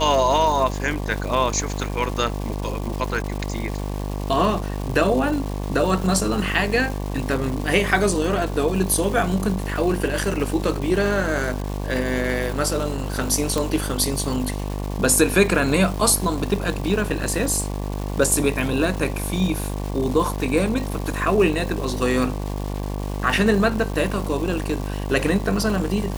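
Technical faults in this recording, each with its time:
mains buzz 50 Hz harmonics 23 −27 dBFS
surface crackle 600 per second −29 dBFS
0:13.58: click

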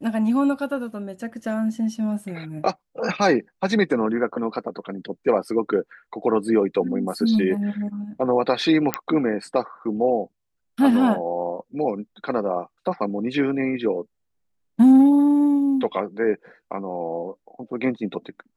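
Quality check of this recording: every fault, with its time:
0:08.94: click −4 dBFS

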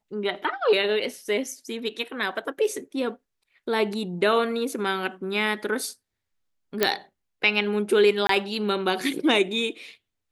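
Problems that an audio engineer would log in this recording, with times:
0:06.83: click −4 dBFS
0:08.27–0:08.29: drop-out 23 ms

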